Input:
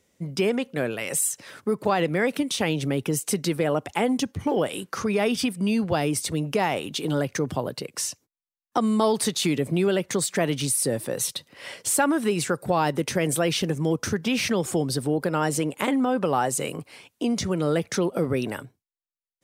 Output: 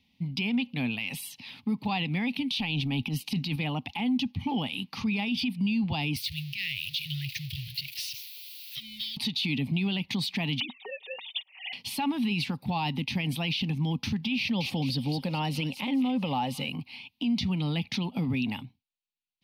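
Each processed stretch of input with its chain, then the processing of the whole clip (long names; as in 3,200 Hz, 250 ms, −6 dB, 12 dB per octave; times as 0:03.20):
0:02.52–0:03.56: notch filter 2,100 Hz, Q 19 + transient designer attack −10 dB, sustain +6 dB
0:06.16–0:09.17: spike at every zero crossing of −25.5 dBFS + Chebyshev band-stop filter 140–1,800 Hz, order 4 + parametric band 470 Hz −8.5 dB 1.9 octaves
0:10.60–0:11.73: three sine waves on the formant tracks + high-pass filter 360 Hz + comb filter 5.3 ms, depth 75%
0:14.39–0:16.70: parametric band 540 Hz +13 dB 0.28 octaves + delay with a high-pass on its return 215 ms, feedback 38%, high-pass 3,100 Hz, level −6 dB
whole clip: drawn EQ curve 170 Hz 0 dB, 250 Hz +5 dB, 350 Hz −16 dB, 580 Hz −20 dB, 840 Hz 0 dB, 1,500 Hz −20 dB, 2,500 Hz +7 dB, 4,500 Hz +3 dB, 7,500 Hz −25 dB, 12,000 Hz −10 dB; brickwall limiter −21 dBFS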